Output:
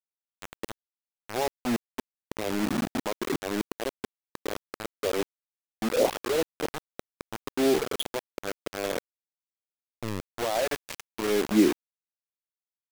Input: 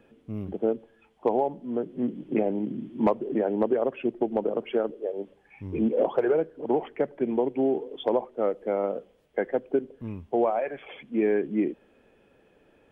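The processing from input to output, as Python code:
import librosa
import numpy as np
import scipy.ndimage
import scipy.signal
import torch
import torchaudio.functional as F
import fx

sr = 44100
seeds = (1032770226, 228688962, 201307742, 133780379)

y = fx.auto_swell(x, sr, attack_ms=585.0)
y = fx.quant_dither(y, sr, seeds[0], bits=6, dither='none')
y = y * librosa.db_to_amplitude(7.0)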